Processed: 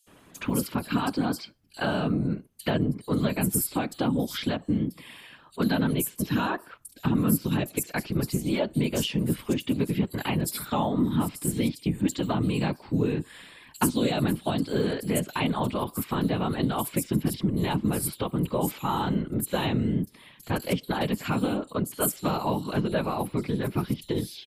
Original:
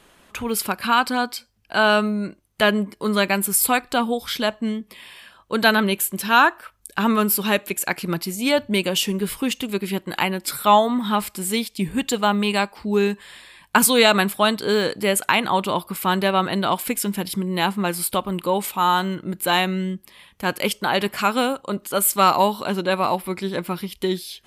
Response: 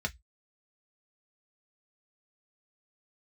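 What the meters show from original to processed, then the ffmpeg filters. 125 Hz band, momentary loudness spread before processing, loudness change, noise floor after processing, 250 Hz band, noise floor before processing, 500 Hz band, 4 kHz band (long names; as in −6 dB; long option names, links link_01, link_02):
+3.0 dB, 10 LU, −6.5 dB, −55 dBFS, −2.0 dB, −56 dBFS, −8.0 dB, −11.5 dB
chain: -filter_complex "[0:a]equalizer=frequency=220:width=1.1:gain=9.5,acrossover=split=160|830|2800[link_01][link_02][link_03][link_04];[link_03]alimiter=limit=-18dB:level=0:latency=1:release=470[link_05];[link_01][link_02][link_05][link_04]amix=inputs=4:normalize=0,acompressor=threshold=-20dB:ratio=4,afftfilt=real='hypot(re,im)*cos(2*PI*random(0))':imag='hypot(re,im)*sin(2*PI*random(1))':win_size=512:overlap=0.75,acrossover=split=5000[link_06][link_07];[link_06]adelay=70[link_08];[link_08][link_07]amix=inputs=2:normalize=0,volume=2.5dB"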